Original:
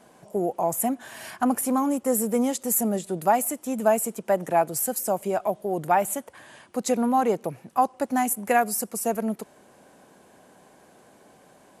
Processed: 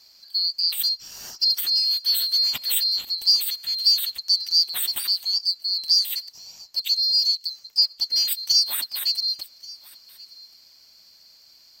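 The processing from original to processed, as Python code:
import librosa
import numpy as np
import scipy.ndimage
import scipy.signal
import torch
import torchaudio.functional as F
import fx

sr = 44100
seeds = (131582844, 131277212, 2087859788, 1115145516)

y = fx.band_swap(x, sr, width_hz=4000)
y = fx.cheby1_highpass(y, sr, hz=3000.0, order=3, at=(6.8, 7.47), fade=0.02)
y = y + 10.0 ** (-21.5 / 20.0) * np.pad(y, (int(1132 * sr / 1000.0), 0))[:len(y)]
y = y * librosa.db_to_amplitude(1.5)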